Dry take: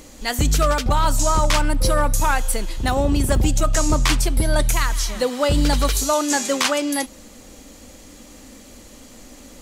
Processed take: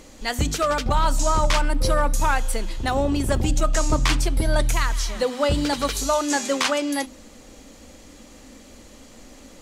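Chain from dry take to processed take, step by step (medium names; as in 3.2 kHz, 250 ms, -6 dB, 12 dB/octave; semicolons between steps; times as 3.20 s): treble shelf 9.8 kHz -10.5 dB; hum notches 50/100/150/200/250/300 Hz; trim -1.5 dB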